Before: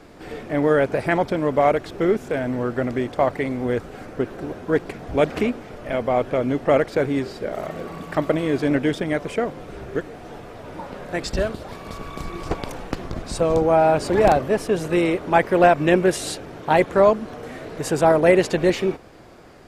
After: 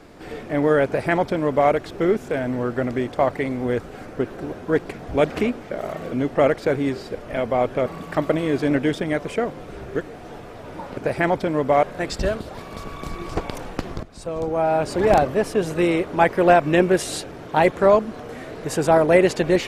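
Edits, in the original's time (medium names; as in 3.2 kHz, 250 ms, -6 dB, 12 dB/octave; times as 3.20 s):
0.85–1.71 s: copy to 10.97 s
5.71–6.42 s: swap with 7.45–7.86 s
13.17–14.32 s: fade in, from -15.5 dB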